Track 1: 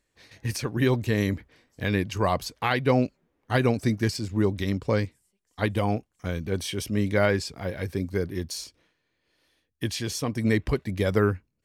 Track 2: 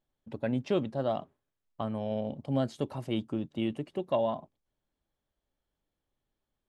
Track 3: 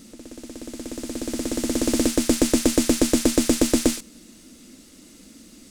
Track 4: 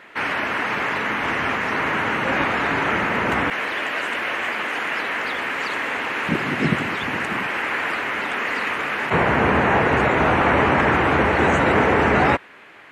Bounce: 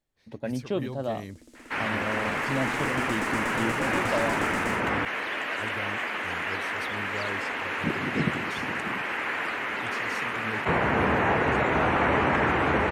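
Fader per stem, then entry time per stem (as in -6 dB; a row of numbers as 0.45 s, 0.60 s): -14.5 dB, -0.5 dB, -17.5 dB, -6.0 dB; 0.00 s, 0.00 s, 0.80 s, 1.55 s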